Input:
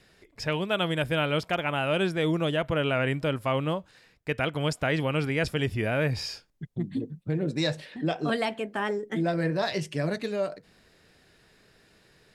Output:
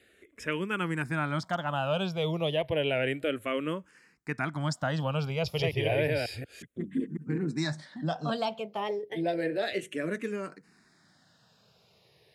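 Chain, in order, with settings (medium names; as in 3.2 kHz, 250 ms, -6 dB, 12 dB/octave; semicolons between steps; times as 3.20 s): 5.35–7.38 s: chunks repeated in reverse 182 ms, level -2 dB; high-pass 96 Hz; barber-pole phaser -0.31 Hz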